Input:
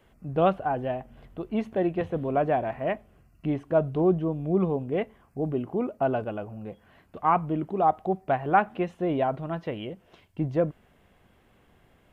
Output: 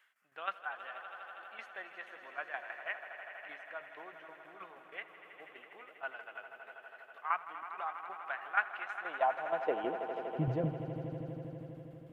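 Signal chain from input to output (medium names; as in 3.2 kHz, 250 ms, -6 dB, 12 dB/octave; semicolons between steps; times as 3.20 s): high-pass sweep 1.6 kHz -> 100 Hz, 8.85–10.61 s; tremolo saw down 6.3 Hz, depth 70%; echo with a slow build-up 81 ms, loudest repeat 5, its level -13.5 dB; trim -5.5 dB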